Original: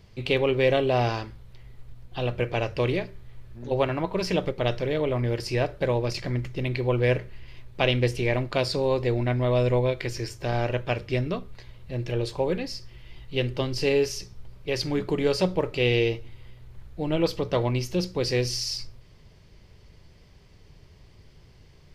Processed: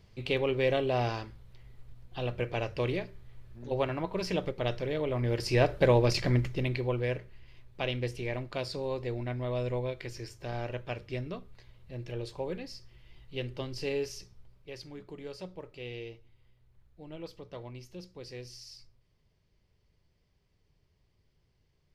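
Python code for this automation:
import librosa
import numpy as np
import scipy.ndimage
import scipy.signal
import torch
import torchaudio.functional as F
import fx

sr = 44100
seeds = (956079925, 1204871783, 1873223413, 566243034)

y = fx.gain(x, sr, db=fx.line((5.08, -6.0), (5.71, 2.0), (6.35, 2.0), (7.13, -10.0), (14.21, -10.0), (14.92, -19.0)))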